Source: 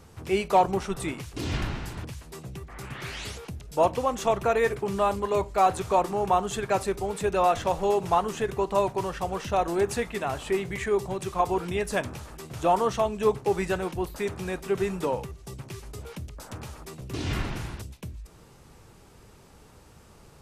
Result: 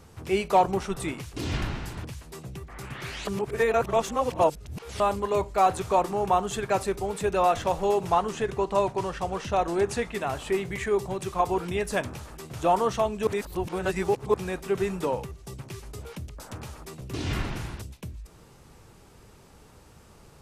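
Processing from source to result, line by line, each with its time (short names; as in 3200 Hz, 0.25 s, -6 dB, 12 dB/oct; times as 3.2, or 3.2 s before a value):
3.27–5 reverse
8.12–10.14 LPF 9500 Hz
13.27–14.34 reverse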